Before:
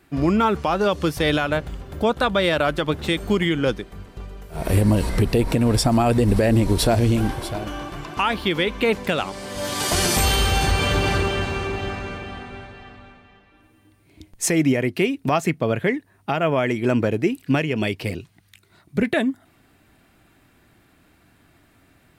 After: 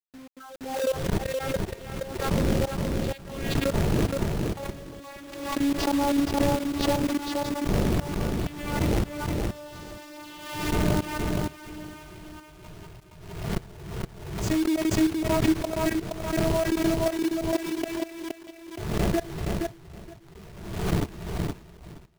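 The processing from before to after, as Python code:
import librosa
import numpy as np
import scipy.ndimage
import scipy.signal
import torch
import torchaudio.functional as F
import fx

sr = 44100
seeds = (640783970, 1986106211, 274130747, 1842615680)

y = fx.vocoder_glide(x, sr, note=60, semitones=5)
y = fx.dmg_wind(y, sr, seeds[0], corner_hz=240.0, level_db=-22.0)
y = fx.noise_reduce_blind(y, sr, reduce_db=19)
y = fx.env_lowpass_down(y, sr, base_hz=820.0, full_db=-11.5)
y = fx.tilt_shelf(y, sr, db=-3.0, hz=680.0)
y = fx.level_steps(y, sr, step_db=22)
y = fx.quant_companded(y, sr, bits=4)
y = fx.echo_feedback(y, sr, ms=470, feedback_pct=16, wet_db=-4)
y = fx.pre_swell(y, sr, db_per_s=57.0)
y = F.gain(torch.from_numpy(y), -1.5).numpy()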